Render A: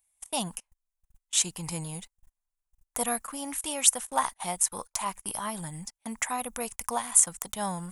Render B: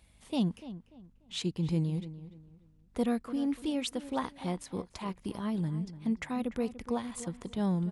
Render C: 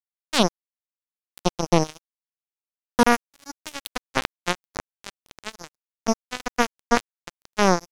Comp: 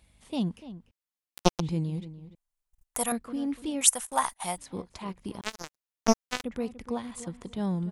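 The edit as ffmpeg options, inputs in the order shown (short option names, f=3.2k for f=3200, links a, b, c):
-filter_complex "[2:a]asplit=2[a][b];[0:a]asplit=2[c][d];[1:a]asplit=5[e][f][g][h][i];[e]atrim=end=0.912[j];[a]atrim=start=0.908:end=1.602[k];[f]atrim=start=1.598:end=2.352[l];[c]atrim=start=2.348:end=3.122[m];[g]atrim=start=3.118:end=3.812[n];[d]atrim=start=3.808:end=4.582[o];[h]atrim=start=4.578:end=5.412[p];[b]atrim=start=5.408:end=6.442[q];[i]atrim=start=6.438[r];[j][k]acrossfade=d=0.004:c1=hsin:c2=hsin[s];[s][l]acrossfade=d=0.004:c1=hsin:c2=hsin[t];[t][m]acrossfade=d=0.004:c1=hsin:c2=hsin[u];[u][n]acrossfade=d=0.004:c1=hsin:c2=hsin[v];[v][o]acrossfade=d=0.004:c1=hsin:c2=hsin[w];[w][p]acrossfade=d=0.004:c1=hsin:c2=hsin[x];[x][q]acrossfade=d=0.004:c1=hsin:c2=hsin[y];[y][r]acrossfade=d=0.004:c1=hsin:c2=hsin"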